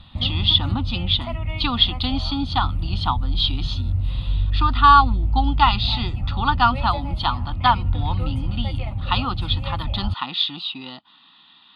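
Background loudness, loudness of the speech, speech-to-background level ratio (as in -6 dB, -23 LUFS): -26.5 LUFS, -21.5 LUFS, 5.0 dB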